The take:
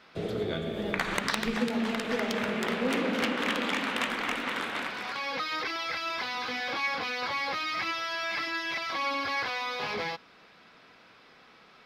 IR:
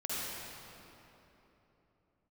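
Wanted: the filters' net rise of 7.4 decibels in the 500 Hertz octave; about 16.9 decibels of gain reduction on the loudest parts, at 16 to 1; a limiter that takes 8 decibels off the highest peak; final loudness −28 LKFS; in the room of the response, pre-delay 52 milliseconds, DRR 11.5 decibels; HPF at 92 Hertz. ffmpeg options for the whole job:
-filter_complex "[0:a]highpass=92,equalizer=frequency=500:width_type=o:gain=8.5,acompressor=threshold=-37dB:ratio=16,alimiter=level_in=9dB:limit=-24dB:level=0:latency=1,volume=-9dB,asplit=2[link_01][link_02];[1:a]atrim=start_sample=2205,adelay=52[link_03];[link_02][link_03]afir=irnorm=-1:irlink=0,volume=-16.5dB[link_04];[link_01][link_04]amix=inputs=2:normalize=0,volume=13dB"

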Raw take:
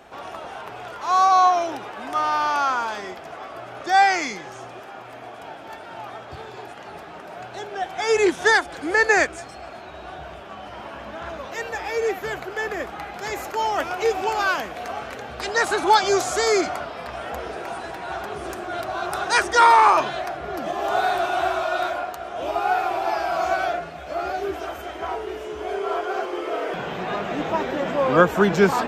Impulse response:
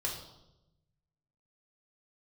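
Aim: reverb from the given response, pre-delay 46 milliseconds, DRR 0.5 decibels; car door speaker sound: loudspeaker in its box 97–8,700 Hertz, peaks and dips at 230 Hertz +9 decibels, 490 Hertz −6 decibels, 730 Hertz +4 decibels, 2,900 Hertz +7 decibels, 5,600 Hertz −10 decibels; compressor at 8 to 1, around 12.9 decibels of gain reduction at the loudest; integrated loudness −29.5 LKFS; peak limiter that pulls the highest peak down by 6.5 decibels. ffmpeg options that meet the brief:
-filter_complex "[0:a]acompressor=threshold=-24dB:ratio=8,alimiter=limit=-20dB:level=0:latency=1,asplit=2[link_01][link_02];[1:a]atrim=start_sample=2205,adelay=46[link_03];[link_02][link_03]afir=irnorm=-1:irlink=0,volume=-4dB[link_04];[link_01][link_04]amix=inputs=2:normalize=0,highpass=97,equalizer=frequency=230:width_type=q:width=4:gain=9,equalizer=frequency=490:width_type=q:width=4:gain=-6,equalizer=frequency=730:width_type=q:width=4:gain=4,equalizer=frequency=2900:width_type=q:width=4:gain=7,equalizer=frequency=5600:width_type=q:width=4:gain=-10,lowpass=frequency=8700:width=0.5412,lowpass=frequency=8700:width=1.3066,volume=-2.5dB"

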